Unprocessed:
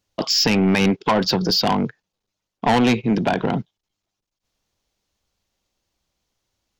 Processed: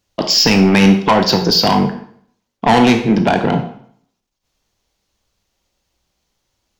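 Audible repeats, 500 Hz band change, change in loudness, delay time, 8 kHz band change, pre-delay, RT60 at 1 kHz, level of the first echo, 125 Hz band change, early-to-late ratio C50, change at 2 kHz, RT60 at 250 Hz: no echo, +6.0 dB, +6.5 dB, no echo, +6.0 dB, 19 ms, 0.65 s, no echo, +6.5 dB, 9.0 dB, +6.0 dB, 0.65 s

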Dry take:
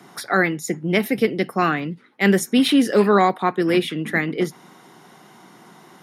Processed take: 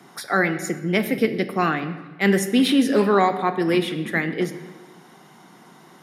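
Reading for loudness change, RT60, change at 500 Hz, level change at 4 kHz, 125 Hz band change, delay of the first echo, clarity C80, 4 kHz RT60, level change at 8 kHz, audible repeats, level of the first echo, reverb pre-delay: -1.5 dB, 1.3 s, -1.5 dB, -1.5 dB, -1.0 dB, no echo, 13.0 dB, 1.1 s, -2.0 dB, no echo, no echo, 4 ms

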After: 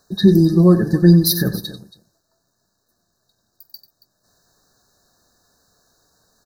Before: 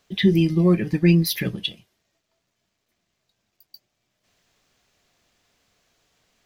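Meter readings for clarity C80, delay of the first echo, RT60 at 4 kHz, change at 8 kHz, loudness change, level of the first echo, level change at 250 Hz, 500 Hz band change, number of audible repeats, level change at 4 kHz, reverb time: no reverb, 46 ms, no reverb, +9.0 dB, +6.0 dB, -19.5 dB, +6.0 dB, +6.0 dB, 3, +2.5 dB, no reverb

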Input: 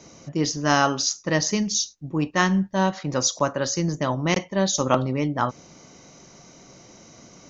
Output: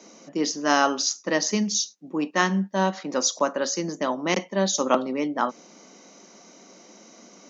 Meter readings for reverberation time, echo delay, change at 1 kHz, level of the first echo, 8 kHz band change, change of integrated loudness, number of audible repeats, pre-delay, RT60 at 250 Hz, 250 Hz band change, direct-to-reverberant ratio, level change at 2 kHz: no reverb, no echo, -0.5 dB, no echo, no reading, -1.5 dB, no echo, no reverb, no reverb, -2.0 dB, no reverb, -1.0 dB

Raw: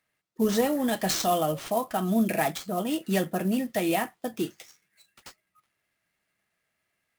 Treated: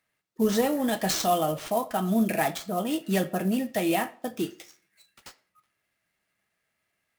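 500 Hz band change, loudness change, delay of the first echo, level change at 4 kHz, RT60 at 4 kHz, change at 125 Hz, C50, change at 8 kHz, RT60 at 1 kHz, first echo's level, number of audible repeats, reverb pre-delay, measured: +0.5 dB, +0.5 dB, no echo, 0.0 dB, 0.40 s, +0.5 dB, 18.5 dB, 0.0 dB, 0.45 s, no echo, no echo, 5 ms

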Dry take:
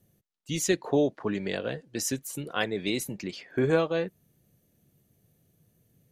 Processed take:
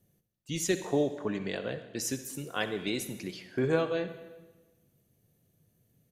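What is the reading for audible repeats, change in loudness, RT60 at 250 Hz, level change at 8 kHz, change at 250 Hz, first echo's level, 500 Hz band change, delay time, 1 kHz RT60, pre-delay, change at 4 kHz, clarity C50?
1, -3.0 dB, 1.3 s, -3.0 dB, -3.5 dB, -18.0 dB, -3.5 dB, 69 ms, 1.2 s, 39 ms, -3.0 dB, 10.5 dB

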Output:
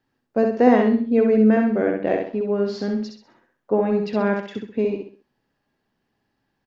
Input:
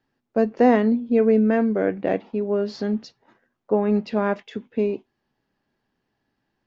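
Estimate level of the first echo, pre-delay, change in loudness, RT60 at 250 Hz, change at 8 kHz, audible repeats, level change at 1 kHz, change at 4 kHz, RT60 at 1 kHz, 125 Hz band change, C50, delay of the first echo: -4.0 dB, no reverb, +1.5 dB, no reverb, no reading, 4, +1.0 dB, +1.5 dB, no reverb, +1.5 dB, no reverb, 65 ms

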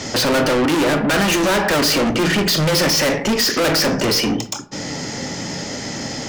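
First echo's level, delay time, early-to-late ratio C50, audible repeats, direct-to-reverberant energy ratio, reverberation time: no echo, no echo, 14.5 dB, no echo, 10.5 dB, 0.50 s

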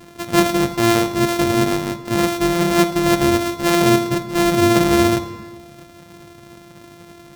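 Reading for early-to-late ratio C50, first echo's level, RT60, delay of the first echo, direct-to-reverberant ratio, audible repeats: 12.0 dB, no echo, 1.4 s, no echo, 10.5 dB, no echo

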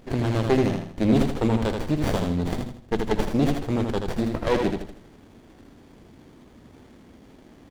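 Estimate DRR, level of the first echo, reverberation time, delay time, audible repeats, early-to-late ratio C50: no reverb, -5.0 dB, no reverb, 80 ms, 4, no reverb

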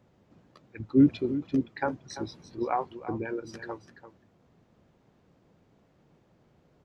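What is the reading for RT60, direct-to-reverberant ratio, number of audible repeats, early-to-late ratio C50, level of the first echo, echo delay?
no reverb, no reverb, 1, no reverb, -12.5 dB, 340 ms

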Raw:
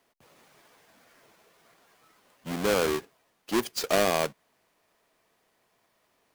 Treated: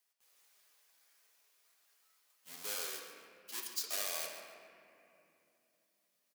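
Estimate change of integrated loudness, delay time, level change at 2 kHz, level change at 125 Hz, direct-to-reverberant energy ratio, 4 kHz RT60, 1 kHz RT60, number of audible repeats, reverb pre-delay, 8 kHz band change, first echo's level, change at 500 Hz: -12.0 dB, 140 ms, -14.0 dB, under -30 dB, -1.0 dB, 1.6 s, 2.6 s, 1, 5 ms, -4.5 dB, -12.0 dB, -23.5 dB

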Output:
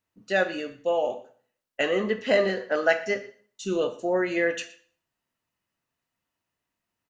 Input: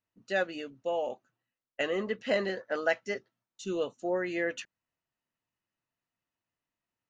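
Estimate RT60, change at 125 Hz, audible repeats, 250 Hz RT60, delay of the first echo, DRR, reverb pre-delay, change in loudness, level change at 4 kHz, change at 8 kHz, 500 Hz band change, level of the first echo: 0.45 s, +6.5 dB, 1, 0.55 s, 118 ms, 7.0 dB, 6 ms, +6.5 dB, +6.0 dB, +6.5 dB, +7.0 dB, -20.5 dB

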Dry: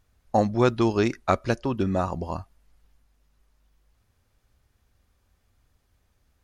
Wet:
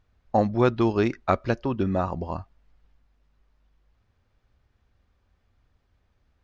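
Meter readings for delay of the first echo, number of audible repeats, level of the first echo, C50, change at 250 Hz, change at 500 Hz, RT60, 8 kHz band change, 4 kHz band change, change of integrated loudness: no echo, no echo, no echo, no reverb, 0.0 dB, 0.0 dB, no reverb, no reading, -3.5 dB, 0.0 dB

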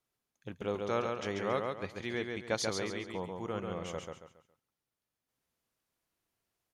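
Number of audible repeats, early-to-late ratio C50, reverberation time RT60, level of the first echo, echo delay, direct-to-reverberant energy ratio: 4, no reverb, no reverb, -4.0 dB, 138 ms, no reverb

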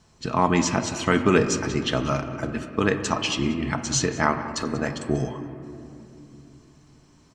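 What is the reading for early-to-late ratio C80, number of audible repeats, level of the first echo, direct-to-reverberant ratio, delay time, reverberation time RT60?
9.5 dB, 1, -18.0 dB, 6.0 dB, 187 ms, 2.8 s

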